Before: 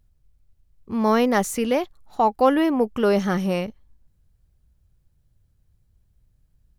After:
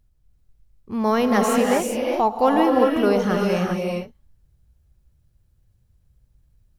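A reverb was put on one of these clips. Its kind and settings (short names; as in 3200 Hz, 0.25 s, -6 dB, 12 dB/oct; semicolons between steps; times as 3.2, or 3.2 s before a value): non-linear reverb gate 0.42 s rising, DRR 0 dB; gain -1 dB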